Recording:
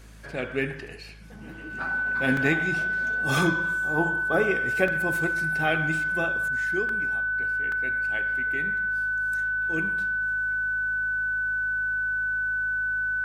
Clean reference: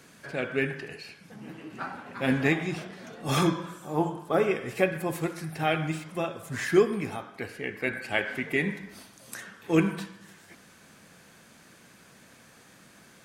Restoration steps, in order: de-hum 53.1 Hz, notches 4; notch 1500 Hz, Q 30; interpolate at 2.37/4.88/6.89/7.72, 2.5 ms; gain correction +10.5 dB, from 6.48

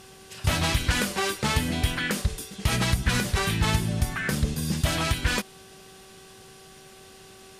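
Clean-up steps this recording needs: de-hum 382.3 Hz, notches 4

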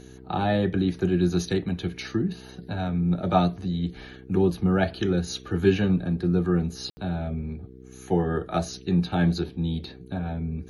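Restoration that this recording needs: de-hum 63.7 Hz, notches 7; room tone fill 6.9–6.97

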